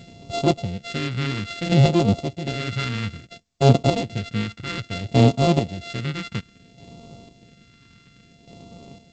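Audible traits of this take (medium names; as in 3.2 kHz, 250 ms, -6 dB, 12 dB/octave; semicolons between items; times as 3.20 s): a buzz of ramps at a fixed pitch in blocks of 64 samples; chopped level 0.59 Hz, depth 60%, duty 30%; phasing stages 2, 0.6 Hz, lowest notch 650–1600 Hz; G.722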